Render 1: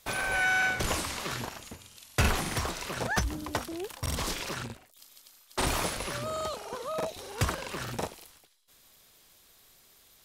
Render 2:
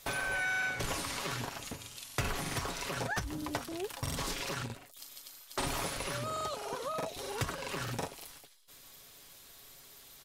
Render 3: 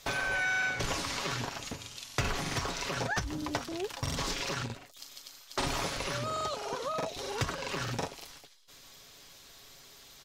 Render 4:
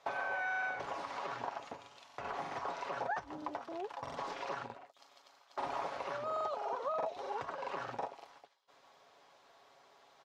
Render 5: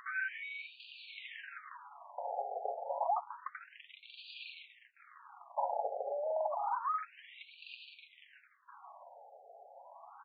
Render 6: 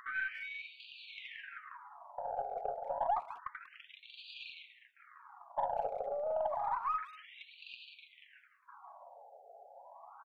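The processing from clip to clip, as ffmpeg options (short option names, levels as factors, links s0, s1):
-af "aecho=1:1:7.2:0.43,acompressor=threshold=0.00891:ratio=2.5,volume=1.58"
-af "highshelf=f=7800:t=q:w=1.5:g=-7,volume=1.33"
-af "alimiter=limit=0.0631:level=0:latency=1:release=145,bandpass=f=800:t=q:w=1.8:csg=0,volume=1.41"
-filter_complex "[0:a]acrossover=split=490|4900[s0][s1][s2];[s1]acompressor=mode=upward:threshold=0.00355:ratio=2.5[s3];[s0][s3][s2]amix=inputs=3:normalize=0,afftfilt=real='re*between(b*sr/1024,580*pow(3400/580,0.5+0.5*sin(2*PI*0.29*pts/sr))/1.41,580*pow(3400/580,0.5+0.5*sin(2*PI*0.29*pts/sr))*1.41)':imag='im*between(b*sr/1024,580*pow(3400/580,0.5+0.5*sin(2*PI*0.29*pts/sr))/1.41,580*pow(3400/580,0.5+0.5*sin(2*PI*0.29*pts/sr))*1.41)':win_size=1024:overlap=0.75,volume=1.88"
-filter_complex "[0:a]aeval=exprs='0.075*(cos(1*acos(clip(val(0)/0.075,-1,1)))-cos(1*PI/2))+0.00266*(cos(4*acos(clip(val(0)/0.075,-1,1)))-cos(4*PI/2))':c=same,asplit=2[s0][s1];[s1]adelay=190,highpass=300,lowpass=3400,asoftclip=type=hard:threshold=0.0237,volume=0.126[s2];[s0][s2]amix=inputs=2:normalize=0"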